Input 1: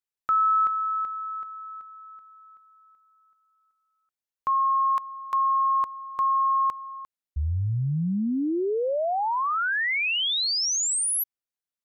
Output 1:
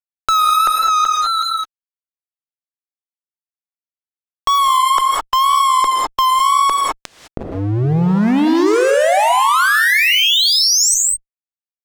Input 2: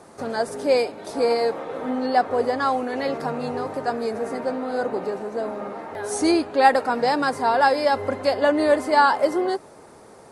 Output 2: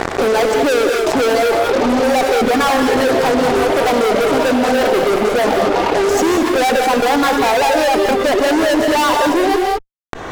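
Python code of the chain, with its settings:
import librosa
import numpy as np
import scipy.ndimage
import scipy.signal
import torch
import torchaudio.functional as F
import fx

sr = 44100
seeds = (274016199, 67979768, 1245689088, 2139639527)

p1 = scipy.signal.sosfilt(scipy.signal.butter(2, 150.0, 'highpass', fs=sr, output='sos'), x)
p2 = fx.dereverb_blind(p1, sr, rt60_s=0.56)
p3 = scipy.signal.sosfilt(scipy.signal.ellip(8, 1.0, 60, 8000.0, 'lowpass', fs=sr, output='sos'), p2)
p4 = fx.dereverb_blind(p3, sr, rt60_s=1.1)
p5 = fx.peak_eq(p4, sr, hz=430.0, db=13.0, octaves=2.6)
p6 = fx.rider(p5, sr, range_db=5, speed_s=2.0)
p7 = p5 + F.gain(torch.from_numpy(p6), 0.5).numpy()
p8 = fx.fuzz(p7, sr, gain_db=21.0, gate_db=-27.0)
p9 = fx.wow_flutter(p8, sr, seeds[0], rate_hz=2.1, depth_cents=74.0)
p10 = fx.rev_gated(p9, sr, seeds[1], gate_ms=230, shape='rising', drr_db=4.5)
p11 = fx.env_flatten(p10, sr, amount_pct=70)
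y = F.gain(torch.from_numpy(p11), -2.0).numpy()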